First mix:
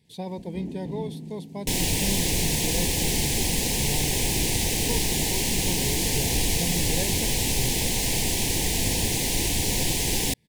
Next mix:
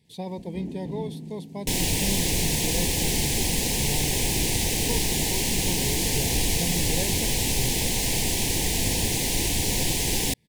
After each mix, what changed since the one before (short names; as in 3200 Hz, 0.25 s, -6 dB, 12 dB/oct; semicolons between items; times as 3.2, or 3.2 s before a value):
speech: add Butterworth band-stop 1400 Hz, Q 3.7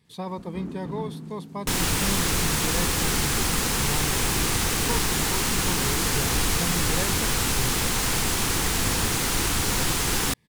master: remove Butterworth band-stop 1300 Hz, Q 1.1